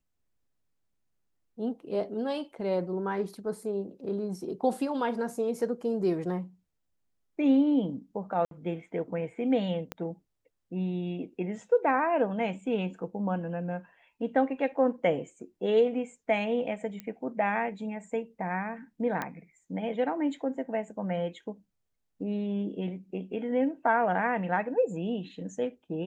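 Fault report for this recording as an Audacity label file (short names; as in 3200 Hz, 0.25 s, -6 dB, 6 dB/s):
8.450000	8.510000	gap 62 ms
9.920000	9.920000	pop -19 dBFS
17.000000	17.000000	pop -23 dBFS
19.220000	19.220000	pop -18 dBFS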